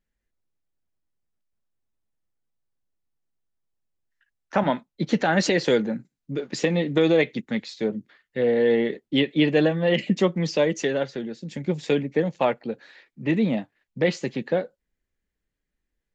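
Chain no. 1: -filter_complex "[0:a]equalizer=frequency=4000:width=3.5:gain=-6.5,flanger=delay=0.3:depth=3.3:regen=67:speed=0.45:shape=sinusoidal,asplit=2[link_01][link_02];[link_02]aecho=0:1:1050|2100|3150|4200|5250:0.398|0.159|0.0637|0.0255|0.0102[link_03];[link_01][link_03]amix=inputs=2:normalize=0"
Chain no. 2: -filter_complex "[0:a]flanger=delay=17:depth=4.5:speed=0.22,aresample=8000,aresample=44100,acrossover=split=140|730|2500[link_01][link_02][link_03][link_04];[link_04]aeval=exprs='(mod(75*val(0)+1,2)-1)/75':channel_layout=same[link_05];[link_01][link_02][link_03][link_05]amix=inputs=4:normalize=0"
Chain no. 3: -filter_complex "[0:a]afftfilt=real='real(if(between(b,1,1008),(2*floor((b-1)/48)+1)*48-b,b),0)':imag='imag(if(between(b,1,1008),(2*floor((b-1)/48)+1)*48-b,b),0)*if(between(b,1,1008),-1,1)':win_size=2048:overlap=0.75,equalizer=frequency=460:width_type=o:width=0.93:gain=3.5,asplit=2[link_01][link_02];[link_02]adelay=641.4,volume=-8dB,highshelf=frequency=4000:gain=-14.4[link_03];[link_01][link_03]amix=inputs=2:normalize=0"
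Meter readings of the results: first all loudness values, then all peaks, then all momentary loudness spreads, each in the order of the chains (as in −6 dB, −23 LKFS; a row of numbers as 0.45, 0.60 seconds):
−28.5, −27.0, −22.0 LKFS; −10.5, −11.0, −6.0 dBFS; 12, 12, 11 LU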